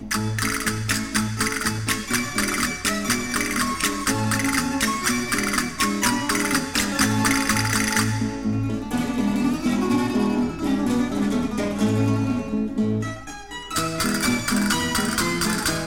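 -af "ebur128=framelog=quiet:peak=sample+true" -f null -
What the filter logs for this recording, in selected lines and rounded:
Integrated loudness:
  I:         -22.3 LUFS
  Threshold: -32.4 LUFS
Loudness range:
  LRA:         2.5 LU
  Threshold: -42.3 LUFS
  LRA low:   -23.5 LUFS
  LRA high:  -21.0 LUFS
Sample peak:
  Peak:       -3.9 dBFS
True peak:
  Peak:       -3.8 dBFS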